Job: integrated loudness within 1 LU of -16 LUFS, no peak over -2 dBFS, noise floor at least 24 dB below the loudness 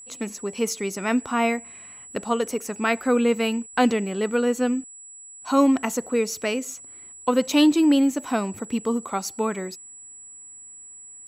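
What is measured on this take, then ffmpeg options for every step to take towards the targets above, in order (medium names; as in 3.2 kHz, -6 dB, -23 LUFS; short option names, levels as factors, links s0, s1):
steady tone 7.8 kHz; tone level -41 dBFS; loudness -23.5 LUFS; peak level -7.0 dBFS; loudness target -16.0 LUFS
-> -af "bandreject=f=7800:w=30"
-af "volume=2.37,alimiter=limit=0.794:level=0:latency=1"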